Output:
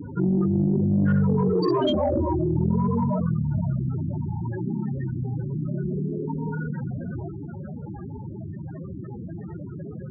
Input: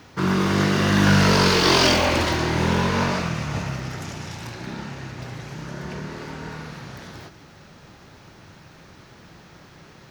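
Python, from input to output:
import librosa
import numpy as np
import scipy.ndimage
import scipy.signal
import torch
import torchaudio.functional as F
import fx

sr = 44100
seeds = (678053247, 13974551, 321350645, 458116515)

y = fx.highpass(x, sr, hz=64.0, slope=6)
y = fx.spec_topn(y, sr, count=8)
y = 10.0 ** (-14.5 / 20.0) * np.tanh(y / 10.0 ** (-14.5 / 20.0))
y = fx.env_flatten(y, sr, amount_pct=50)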